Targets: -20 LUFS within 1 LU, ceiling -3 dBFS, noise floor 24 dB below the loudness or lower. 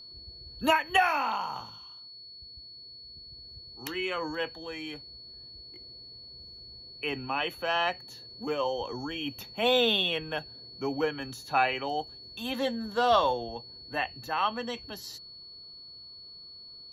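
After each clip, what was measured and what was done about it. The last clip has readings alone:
steady tone 4400 Hz; tone level -45 dBFS; loudness -29.5 LUFS; peak -11.0 dBFS; loudness target -20.0 LUFS
-> notch 4400 Hz, Q 30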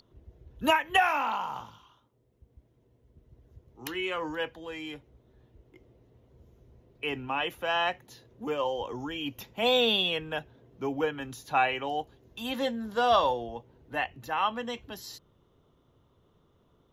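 steady tone none; loudness -29.5 LUFS; peak -11.0 dBFS; loudness target -20.0 LUFS
-> gain +9.5 dB; limiter -3 dBFS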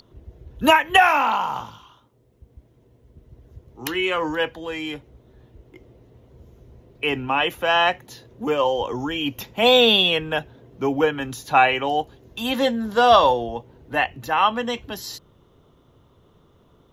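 loudness -20.0 LUFS; peak -3.0 dBFS; noise floor -58 dBFS

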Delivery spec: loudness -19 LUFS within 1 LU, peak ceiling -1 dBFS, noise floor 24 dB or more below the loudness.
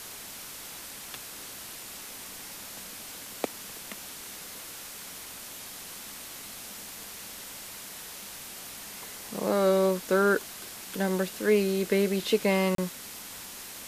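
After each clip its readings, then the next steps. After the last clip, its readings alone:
dropouts 1; longest dropout 33 ms; noise floor -43 dBFS; noise floor target -56 dBFS; loudness -31.5 LUFS; peak -12.0 dBFS; loudness target -19.0 LUFS
-> interpolate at 12.75, 33 ms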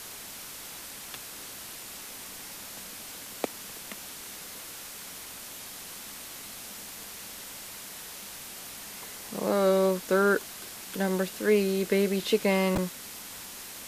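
dropouts 0; noise floor -43 dBFS; noise floor target -56 dBFS
-> denoiser 13 dB, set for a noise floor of -43 dBFS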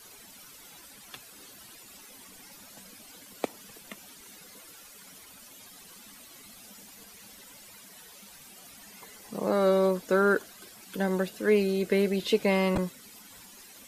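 noise floor -51 dBFS; loudness -27.0 LUFS; peak -12.5 dBFS; loudness target -19.0 LUFS
-> gain +8 dB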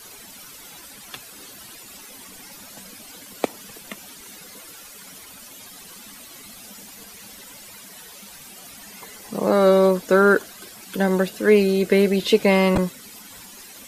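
loudness -19.0 LUFS; peak -4.5 dBFS; noise floor -43 dBFS

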